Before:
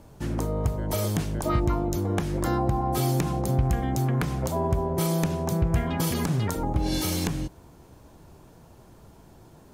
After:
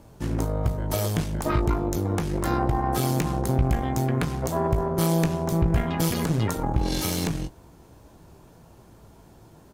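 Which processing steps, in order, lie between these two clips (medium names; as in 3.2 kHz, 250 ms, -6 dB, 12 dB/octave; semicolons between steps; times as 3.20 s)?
Chebyshev shaper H 4 -14 dB, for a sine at -11 dBFS; doubling 18 ms -11 dB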